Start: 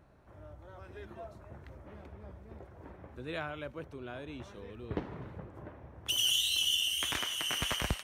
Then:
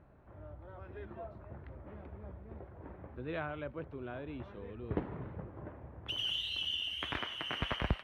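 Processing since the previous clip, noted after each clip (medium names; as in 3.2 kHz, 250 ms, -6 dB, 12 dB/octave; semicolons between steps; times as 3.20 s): distance through air 410 m; trim +1.5 dB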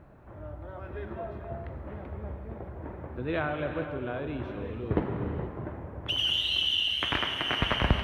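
gated-style reverb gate 500 ms flat, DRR 5 dB; trim +8 dB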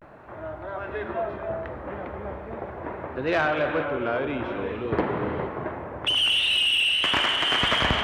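overdrive pedal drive 19 dB, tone 2.9 kHz, clips at -11.5 dBFS; vibrato 0.41 Hz 76 cents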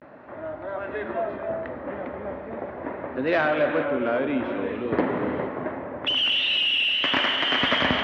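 cabinet simulation 100–5200 Hz, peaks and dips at 120 Hz -3 dB, 260 Hz +9 dB, 570 Hz +5 dB, 1.9 kHz +4 dB; trim -1 dB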